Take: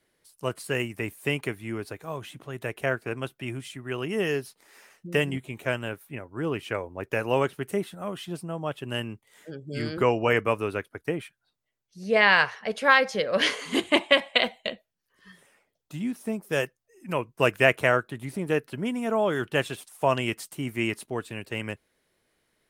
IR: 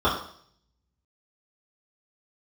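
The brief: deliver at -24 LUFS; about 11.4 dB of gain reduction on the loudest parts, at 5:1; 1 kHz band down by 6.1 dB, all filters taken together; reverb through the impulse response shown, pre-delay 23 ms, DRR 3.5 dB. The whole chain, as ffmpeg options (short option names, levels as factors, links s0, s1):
-filter_complex "[0:a]equalizer=f=1000:t=o:g=-8,acompressor=threshold=0.0355:ratio=5,asplit=2[s0][s1];[1:a]atrim=start_sample=2205,adelay=23[s2];[s1][s2]afir=irnorm=-1:irlink=0,volume=0.0841[s3];[s0][s3]amix=inputs=2:normalize=0,volume=2.99"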